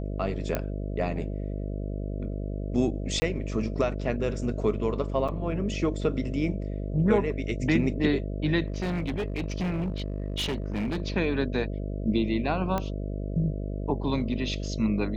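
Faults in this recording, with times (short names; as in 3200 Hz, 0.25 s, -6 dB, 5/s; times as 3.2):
buzz 50 Hz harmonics 13 -32 dBFS
0.55 pop -13 dBFS
3.2–3.22 gap 20 ms
5.28–5.29 gap 5.9 ms
8.68–11.02 clipped -25.5 dBFS
12.78 pop -15 dBFS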